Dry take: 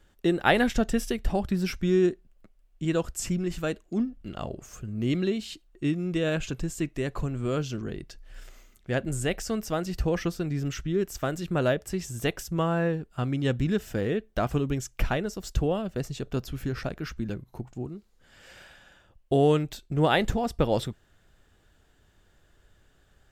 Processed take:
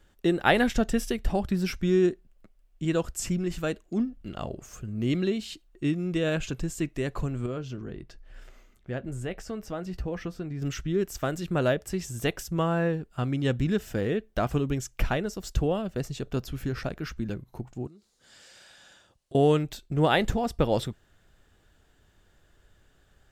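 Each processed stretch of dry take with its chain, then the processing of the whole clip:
0:07.46–0:10.62: downward compressor 1.5 to 1, threshold −38 dBFS + high-shelf EQ 3,800 Hz −11 dB + double-tracking delay 16 ms −13.5 dB
0:17.87–0:19.35: high-pass filter 170 Hz 6 dB per octave + flat-topped bell 6,000 Hz +9 dB + downward compressor, threshold −49 dBFS
whole clip: no processing

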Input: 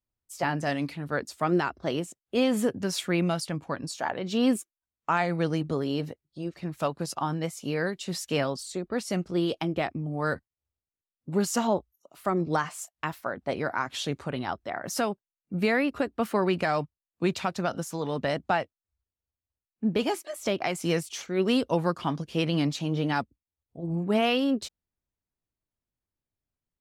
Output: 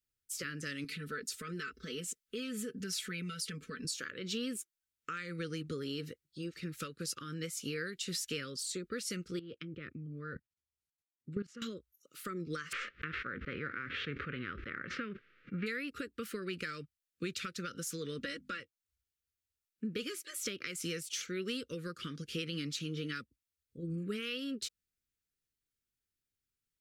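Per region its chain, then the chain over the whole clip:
0:00.84–0:03.85: comb filter 4.6 ms, depth 99% + downward compressor 3 to 1, threshold −35 dBFS
0:09.39–0:11.62: treble cut that deepens with the level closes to 2,000 Hz, closed at −25 dBFS + parametric band 140 Hz +6.5 dB 2.3 octaves + output level in coarse steps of 19 dB
0:12.71–0:15.66: spectral envelope flattened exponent 0.6 + low-pass filter 2,200 Hz 24 dB per octave + level that may fall only so fast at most 37 dB per second
0:18.19–0:18.60: mains-hum notches 50/100/150/200/250 Hz + comb filter 3.6 ms, depth 83%
whole clip: tilt shelving filter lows −4.5 dB; downward compressor, threshold −33 dBFS; Chebyshev band-stop filter 490–1,300 Hz, order 3; level −1 dB

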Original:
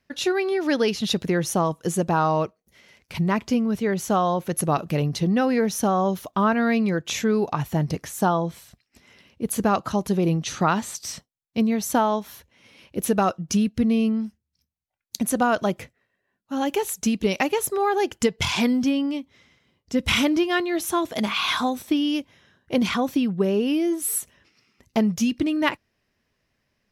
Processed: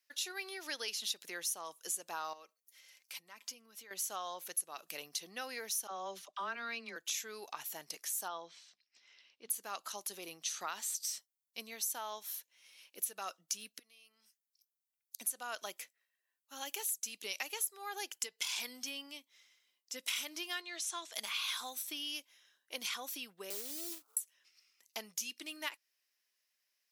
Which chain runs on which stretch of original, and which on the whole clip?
0:02.33–0:03.91: downward compressor 4 to 1, threshold −33 dBFS + comb filter 3.8 ms, depth 40%
0:05.87–0:06.96: high-frequency loss of the air 86 metres + comb filter 5.1 ms, depth 43% + all-pass dispersion lows, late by 44 ms, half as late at 520 Hz
0:08.28–0:09.50: low-pass filter 5,300 Hz 24 dB per octave + mains-hum notches 60/120/180/240/300 Hz
0:13.79–0:15.19: high-pass filter 1,200 Hz 6 dB per octave + downward compressor 10 to 1, threshold −45 dBFS
0:20.61–0:21.13: low-pass filter 8,100 Hz 24 dB per octave + low-shelf EQ 230 Hz −10.5 dB + de-essing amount 55%
0:23.50–0:24.17: Butterworth low-pass 1,400 Hz 96 dB per octave + floating-point word with a short mantissa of 2 bits
whole clip: high-pass filter 300 Hz 12 dB per octave; first difference; downward compressor 4 to 1, threshold −35 dBFS

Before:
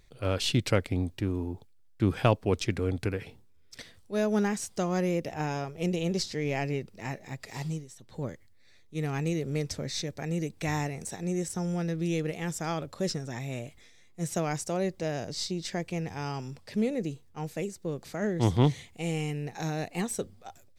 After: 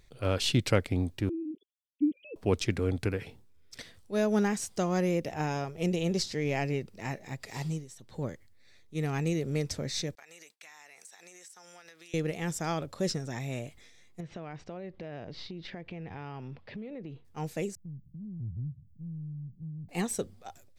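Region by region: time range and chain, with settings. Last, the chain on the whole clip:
0:01.29–0:02.36: three sine waves on the formant tracks + inverse Chebyshev band-stop filter 750–1,700 Hz, stop band 60 dB + low-shelf EQ 230 Hz −8 dB
0:10.15–0:12.14: downward expander −42 dBFS + high-pass filter 1,200 Hz + downward compressor 16 to 1, threshold −47 dBFS
0:14.20–0:17.25: low-pass filter 3,400 Hz 24 dB per octave + downward compressor 12 to 1, threshold −37 dBFS
0:17.75–0:19.89: inverse Chebyshev band-stop filter 930–8,900 Hz, stop band 80 dB + downward compressor 2.5 to 1, threshold −39 dBFS
whole clip: no processing

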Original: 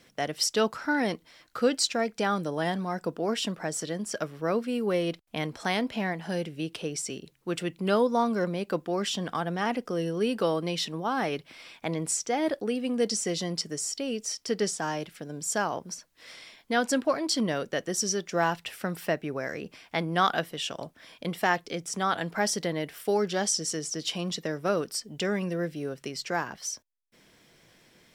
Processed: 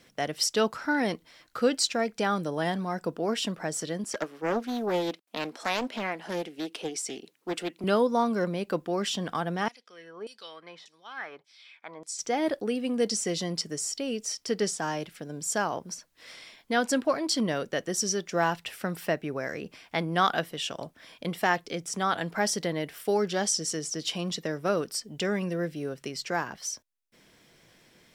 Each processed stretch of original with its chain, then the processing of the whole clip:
0:04.04–0:07.84: high-pass filter 240 Hz 24 dB per octave + highs frequency-modulated by the lows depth 0.52 ms
0:09.68–0:12.19: notch filter 2,800 Hz, Q 10 + auto-filter band-pass saw down 1.7 Hz 730–6,900 Hz
whole clip: no processing

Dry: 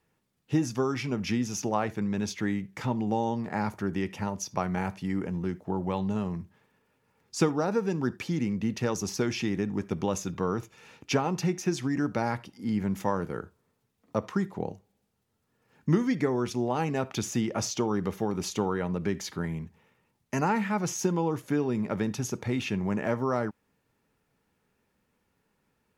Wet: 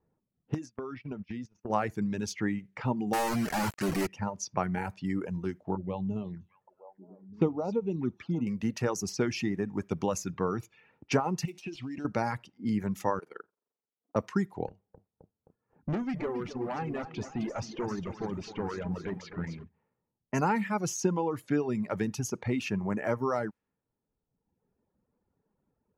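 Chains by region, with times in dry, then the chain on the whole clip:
0:00.54–0:01.70: notch filter 810 Hz, Q 11 + noise gate −32 dBFS, range −26 dB + downward compressor 8 to 1, threshold −32 dBFS
0:03.13–0:04.07: low-shelf EQ 95 Hz −5 dB + log-companded quantiser 2 bits
0:05.75–0:08.47: flanger swept by the level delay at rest 2.2 ms, full sweep at −25.5 dBFS + head-to-tape spacing loss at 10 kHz 24 dB + echo through a band-pass that steps 307 ms, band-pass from 5,000 Hz, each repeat −1.4 octaves, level −5.5 dB
0:11.45–0:12.05: gap after every zero crossing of 0.064 ms + high shelf with overshoot 2,200 Hz +6 dB, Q 3 + downward compressor 5 to 1, threshold −33 dBFS
0:13.19–0:14.16: high-pass filter 390 Hz + amplitude modulation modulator 23 Hz, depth 75%
0:14.68–0:19.64: low-pass filter 3,500 Hz + tube saturation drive 27 dB, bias 0.3 + feedback echo at a low word length 262 ms, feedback 55%, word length 11 bits, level −8 dB
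whole clip: low-pass that shuts in the quiet parts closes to 780 Hz, open at −27.5 dBFS; reverb reduction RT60 1.2 s; dynamic equaliser 3,500 Hz, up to −7 dB, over −60 dBFS, Q 4.2

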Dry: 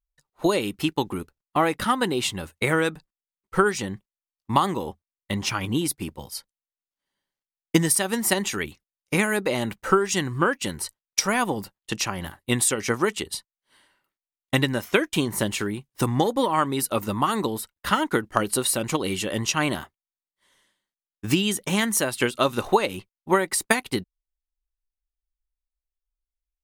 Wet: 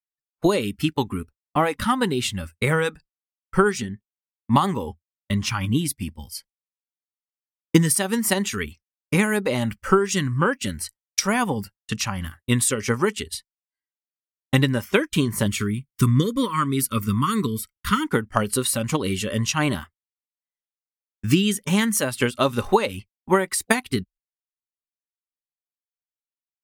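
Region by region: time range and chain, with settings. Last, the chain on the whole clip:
0:03.81–0:04.56: hollow resonant body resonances 240/390/1,800/3,300 Hz, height 9 dB, ringing for 85 ms + expander for the loud parts, over −39 dBFS
0:15.46–0:18.06: Butterworth band-reject 750 Hz, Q 1.3 + high-shelf EQ 11,000 Hz +3 dB + comb filter 0.9 ms, depth 34%
whole clip: noise reduction from a noise print of the clip's start 13 dB; noise gate −49 dBFS, range −31 dB; low-shelf EQ 240 Hz +8 dB

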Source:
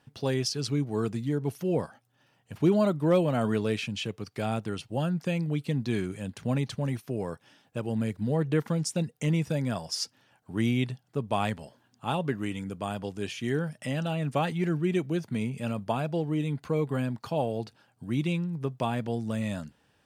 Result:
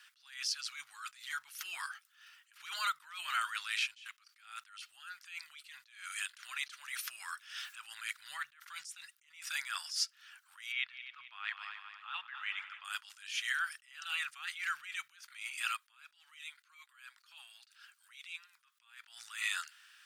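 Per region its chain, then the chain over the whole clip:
0:05.04–0:07.80: low-shelf EQ 400 Hz −9 dB + upward compression, threshold −39 dBFS
0:10.72–0:12.85: high-frequency loss of the air 300 metres + echo machine with several playback heads 88 ms, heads second and third, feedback 53%, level −18.5 dB
0:15.76–0:19.04: high-pass filter 1,000 Hz 6 dB per octave + downward compressor 2 to 1, threshold −57 dBFS
whole clip: elliptic high-pass filter 1,300 Hz, stop band 60 dB; downward compressor 6 to 1, threshold −41 dBFS; level that may rise only so fast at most 120 dB per second; level +11.5 dB

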